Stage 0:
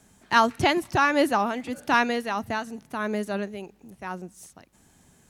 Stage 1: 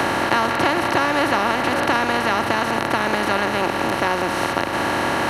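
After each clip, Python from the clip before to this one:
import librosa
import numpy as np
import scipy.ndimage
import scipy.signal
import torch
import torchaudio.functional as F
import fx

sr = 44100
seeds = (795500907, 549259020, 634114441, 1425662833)

y = fx.bin_compress(x, sr, power=0.2)
y = fx.band_squash(y, sr, depth_pct=70)
y = y * 10.0 ** (-4.0 / 20.0)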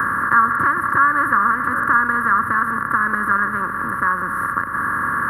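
y = fx.bin_expand(x, sr, power=1.5)
y = fx.curve_eq(y, sr, hz=(240.0, 350.0, 510.0, 770.0, 1100.0, 1700.0, 2400.0, 3600.0, 6900.0, 10000.0), db=(0, -10, -6, -26, 12, 9, -25, -28, -26, 0))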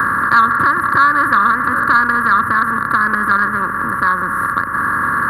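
y = 10.0 ** (-5.0 / 20.0) * np.tanh(x / 10.0 ** (-5.0 / 20.0))
y = y * 10.0 ** (4.5 / 20.0)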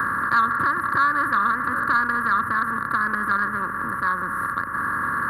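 y = fx.attack_slew(x, sr, db_per_s=270.0)
y = y * 10.0 ** (-8.0 / 20.0)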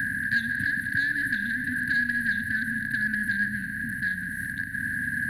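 y = fx.brickwall_bandstop(x, sr, low_hz=290.0, high_hz=1500.0)
y = fx.rev_schroeder(y, sr, rt60_s=3.7, comb_ms=32, drr_db=10.0)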